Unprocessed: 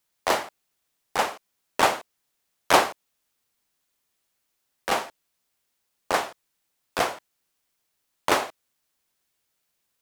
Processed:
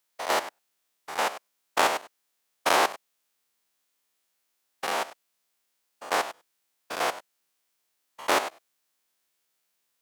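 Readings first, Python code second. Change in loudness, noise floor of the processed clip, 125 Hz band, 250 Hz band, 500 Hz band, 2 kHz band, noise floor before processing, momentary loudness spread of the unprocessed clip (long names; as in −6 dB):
−2.5 dB, −77 dBFS, can't be measured, −4.5 dB, −2.5 dB, −1.5 dB, −77 dBFS, 17 LU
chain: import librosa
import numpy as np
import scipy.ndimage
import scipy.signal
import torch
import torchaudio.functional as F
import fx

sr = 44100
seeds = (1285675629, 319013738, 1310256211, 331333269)

y = fx.spec_steps(x, sr, hold_ms=100)
y = fx.highpass(y, sr, hz=310.0, slope=6)
y = y * 10.0 ** (1.5 / 20.0)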